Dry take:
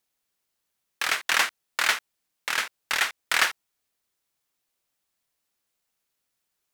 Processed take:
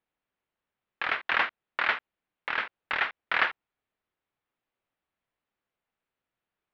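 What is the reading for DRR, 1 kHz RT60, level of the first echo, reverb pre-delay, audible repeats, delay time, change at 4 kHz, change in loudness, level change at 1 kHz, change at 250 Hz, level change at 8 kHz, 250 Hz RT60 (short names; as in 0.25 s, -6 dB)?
none, none, none, none, none, none, -9.0 dB, -4.0 dB, -1.0 dB, 0.0 dB, under -30 dB, none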